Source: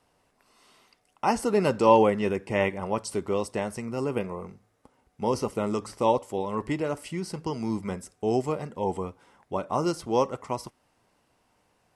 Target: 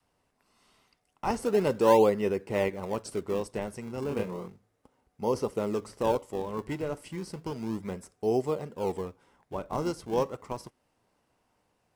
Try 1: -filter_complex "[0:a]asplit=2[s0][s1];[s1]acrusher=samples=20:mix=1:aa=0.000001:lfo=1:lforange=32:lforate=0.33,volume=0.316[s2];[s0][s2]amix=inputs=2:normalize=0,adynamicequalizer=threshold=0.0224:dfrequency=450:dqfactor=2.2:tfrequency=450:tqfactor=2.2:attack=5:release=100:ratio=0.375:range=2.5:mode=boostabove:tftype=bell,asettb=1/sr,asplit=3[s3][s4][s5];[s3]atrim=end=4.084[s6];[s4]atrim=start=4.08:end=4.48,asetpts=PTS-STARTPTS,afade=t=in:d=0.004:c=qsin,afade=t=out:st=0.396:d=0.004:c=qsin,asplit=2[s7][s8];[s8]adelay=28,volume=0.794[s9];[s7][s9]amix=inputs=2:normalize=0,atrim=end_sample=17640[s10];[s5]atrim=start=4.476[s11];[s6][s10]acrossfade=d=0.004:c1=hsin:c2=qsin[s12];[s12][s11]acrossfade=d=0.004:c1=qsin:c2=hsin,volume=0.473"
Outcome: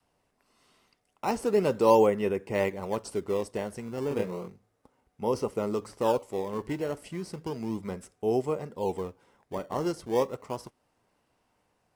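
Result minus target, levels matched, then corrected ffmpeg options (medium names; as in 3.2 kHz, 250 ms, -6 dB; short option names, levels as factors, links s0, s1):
decimation with a swept rate: distortion -6 dB
-filter_complex "[0:a]asplit=2[s0][s1];[s1]acrusher=samples=41:mix=1:aa=0.000001:lfo=1:lforange=65.6:lforate=0.33,volume=0.316[s2];[s0][s2]amix=inputs=2:normalize=0,adynamicequalizer=threshold=0.0224:dfrequency=450:dqfactor=2.2:tfrequency=450:tqfactor=2.2:attack=5:release=100:ratio=0.375:range=2.5:mode=boostabove:tftype=bell,asettb=1/sr,asplit=3[s3][s4][s5];[s3]atrim=end=4.084[s6];[s4]atrim=start=4.08:end=4.48,asetpts=PTS-STARTPTS,afade=t=in:d=0.004:c=qsin,afade=t=out:st=0.396:d=0.004:c=qsin,asplit=2[s7][s8];[s8]adelay=28,volume=0.794[s9];[s7][s9]amix=inputs=2:normalize=0,atrim=end_sample=17640[s10];[s5]atrim=start=4.476[s11];[s6][s10]acrossfade=d=0.004:c1=hsin:c2=qsin[s12];[s12][s11]acrossfade=d=0.004:c1=qsin:c2=hsin,volume=0.473"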